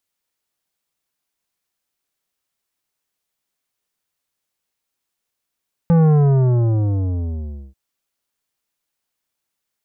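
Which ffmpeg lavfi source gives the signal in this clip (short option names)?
-f lavfi -i "aevalsrc='0.282*clip((1.84-t)/1.71,0,1)*tanh(3.76*sin(2*PI*170*1.84/log(65/170)*(exp(log(65/170)*t/1.84)-1)))/tanh(3.76)':d=1.84:s=44100"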